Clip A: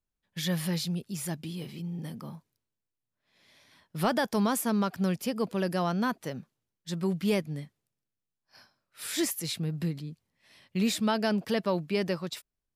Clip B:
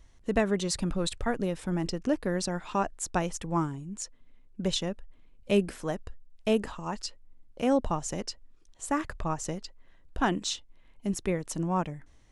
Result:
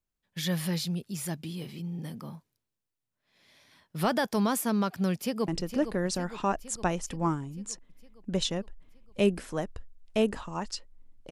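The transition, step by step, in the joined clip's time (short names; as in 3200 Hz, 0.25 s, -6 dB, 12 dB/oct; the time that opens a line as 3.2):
clip A
5.13–5.48 echo throw 0.46 s, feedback 65%, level -10 dB
5.48 switch to clip B from 1.79 s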